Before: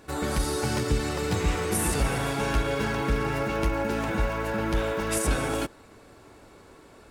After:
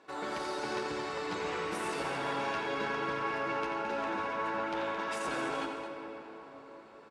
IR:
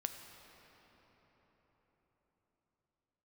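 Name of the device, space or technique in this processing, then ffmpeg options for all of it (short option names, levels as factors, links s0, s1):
station announcement: -filter_complex "[0:a]highpass=330,lowpass=4600,equalizer=f=1000:t=o:w=0.34:g=4.5,aecho=1:1:87.46|218.7:0.355|0.355[s0];[1:a]atrim=start_sample=2205[s1];[s0][s1]afir=irnorm=-1:irlink=0,volume=0.562"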